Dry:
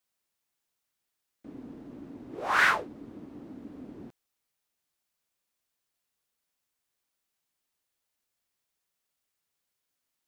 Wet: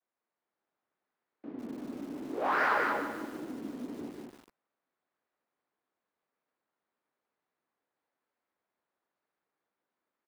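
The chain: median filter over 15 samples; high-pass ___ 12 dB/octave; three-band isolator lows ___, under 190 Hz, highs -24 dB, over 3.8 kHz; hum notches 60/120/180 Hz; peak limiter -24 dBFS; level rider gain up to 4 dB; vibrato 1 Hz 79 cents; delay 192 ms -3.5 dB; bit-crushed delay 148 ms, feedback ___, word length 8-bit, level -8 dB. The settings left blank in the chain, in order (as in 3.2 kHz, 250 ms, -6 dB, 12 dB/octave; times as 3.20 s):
56 Hz, -15 dB, 55%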